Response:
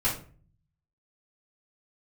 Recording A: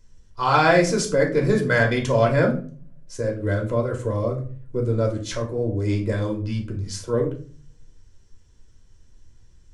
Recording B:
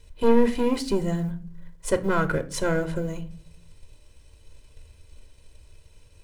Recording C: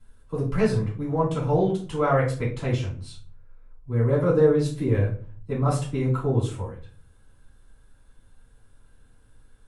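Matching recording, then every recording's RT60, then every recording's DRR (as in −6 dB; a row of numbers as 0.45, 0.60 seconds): C; 0.40, 0.45, 0.40 seconds; −0.5, 8.5, −10.0 decibels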